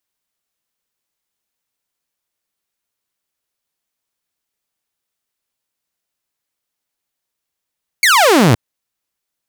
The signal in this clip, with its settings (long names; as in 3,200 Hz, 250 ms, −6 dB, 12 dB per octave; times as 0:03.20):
single falling chirp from 2,300 Hz, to 99 Hz, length 0.52 s saw, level −5 dB